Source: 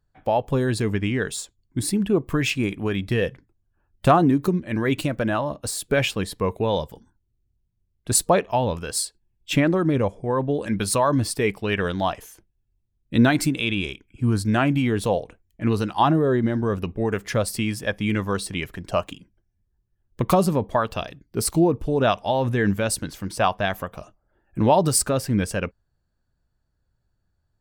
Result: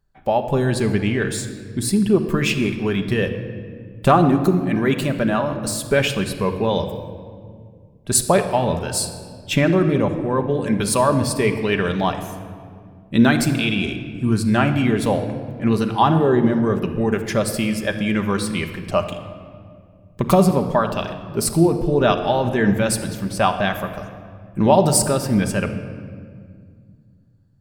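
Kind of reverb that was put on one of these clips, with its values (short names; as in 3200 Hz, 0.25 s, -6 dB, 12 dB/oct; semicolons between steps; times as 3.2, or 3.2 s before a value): shoebox room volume 3900 m³, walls mixed, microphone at 1.2 m; gain +2 dB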